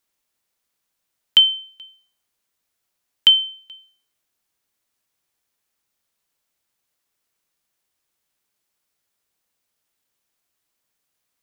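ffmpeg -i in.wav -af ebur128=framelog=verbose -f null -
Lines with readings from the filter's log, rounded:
Integrated loudness:
  I:         -14.9 LUFS
  Threshold: -28.3 LUFS
Loudness range:
  LRA:         3.0 LU
  Threshold: -42.1 LUFS
  LRA low:   -22.7 LUFS
  LRA high:  -19.7 LUFS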